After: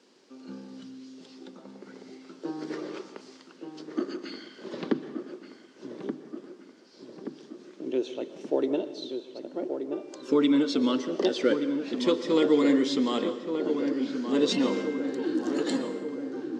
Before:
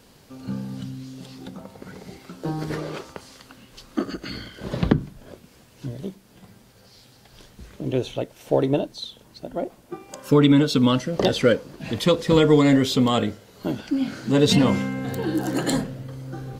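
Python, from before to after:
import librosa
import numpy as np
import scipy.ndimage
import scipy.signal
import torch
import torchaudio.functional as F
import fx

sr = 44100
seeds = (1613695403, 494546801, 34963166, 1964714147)

p1 = fx.cabinet(x, sr, low_hz=240.0, low_slope=24, high_hz=7300.0, hz=(250.0, 360.0, 710.0, 5300.0), db=(3, 8, -4, 3))
p2 = p1 + fx.echo_filtered(p1, sr, ms=1177, feedback_pct=65, hz=1700.0, wet_db=-7.0, dry=0)
p3 = fx.rev_plate(p2, sr, seeds[0], rt60_s=0.93, hf_ratio=1.0, predelay_ms=105, drr_db=12.5)
y = p3 * 10.0 ** (-8.0 / 20.0)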